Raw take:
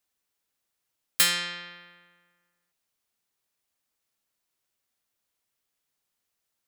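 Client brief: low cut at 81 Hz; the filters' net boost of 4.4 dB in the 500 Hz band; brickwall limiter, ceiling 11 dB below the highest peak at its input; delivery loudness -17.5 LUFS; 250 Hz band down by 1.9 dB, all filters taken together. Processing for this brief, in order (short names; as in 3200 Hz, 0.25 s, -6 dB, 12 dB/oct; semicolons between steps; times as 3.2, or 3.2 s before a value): HPF 81 Hz; bell 250 Hz -6 dB; bell 500 Hz +6 dB; gain +14 dB; limiter -5 dBFS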